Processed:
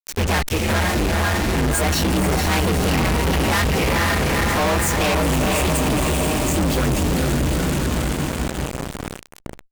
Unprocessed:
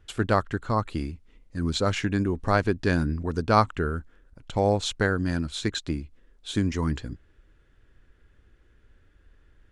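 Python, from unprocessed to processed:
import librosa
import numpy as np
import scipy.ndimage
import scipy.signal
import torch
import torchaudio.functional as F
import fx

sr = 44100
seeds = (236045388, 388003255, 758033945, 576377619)

y = fx.partial_stretch(x, sr, pct=128)
y = fx.echo_diffused(y, sr, ms=476, feedback_pct=64, wet_db=-5.0)
y = fx.fuzz(y, sr, gain_db=48.0, gate_db=-41.0)
y = fx.sustainer(y, sr, db_per_s=130.0)
y = F.gain(torch.from_numpy(y), -4.0).numpy()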